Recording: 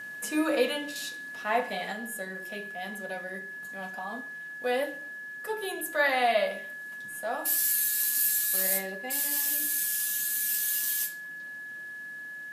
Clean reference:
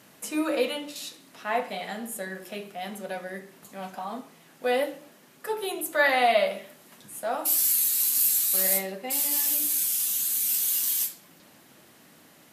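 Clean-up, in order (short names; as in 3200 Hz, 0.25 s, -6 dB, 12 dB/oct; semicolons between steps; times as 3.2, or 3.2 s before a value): notch 1700 Hz, Q 30; gain 0 dB, from 1.92 s +3.5 dB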